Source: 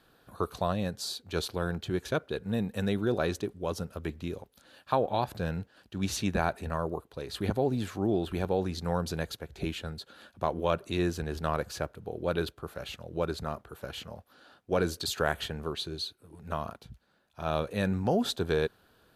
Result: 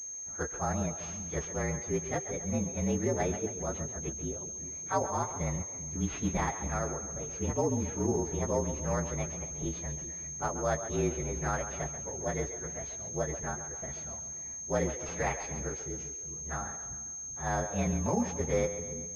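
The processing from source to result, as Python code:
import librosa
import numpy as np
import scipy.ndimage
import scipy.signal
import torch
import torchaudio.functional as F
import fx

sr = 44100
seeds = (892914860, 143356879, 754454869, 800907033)

y = fx.partial_stretch(x, sr, pct=116)
y = fx.echo_split(y, sr, split_hz=340.0, low_ms=391, high_ms=135, feedback_pct=52, wet_db=-11)
y = fx.pwm(y, sr, carrier_hz=6400.0)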